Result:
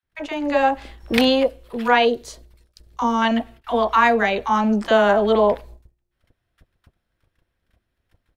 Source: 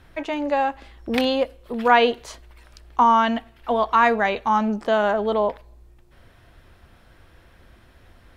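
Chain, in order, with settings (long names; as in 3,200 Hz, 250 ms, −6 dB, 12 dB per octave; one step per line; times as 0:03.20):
high-shelf EQ 4,900 Hz +2.5 dB
noise gate −45 dBFS, range −30 dB
automatic gain control gain up to 8.5 dB
0:02.05–0:03.22: flat-topped bell 1,500 Hz −8.5 dB 2.4 octaves
multiband delay without the direct sound highs, lows 30 ms, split 940 Hz
level −1 dB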